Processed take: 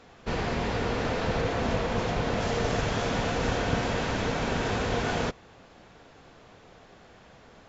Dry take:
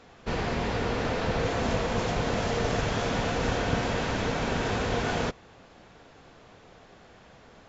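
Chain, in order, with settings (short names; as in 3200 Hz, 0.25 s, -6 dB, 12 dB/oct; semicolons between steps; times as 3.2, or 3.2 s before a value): 1.41–2.41 air absorption 56 m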